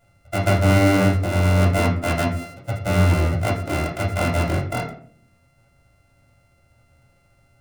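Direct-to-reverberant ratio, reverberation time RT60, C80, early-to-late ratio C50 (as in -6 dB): -5.5 dB, 0.55 s, 10.5 dB, 7.0 dB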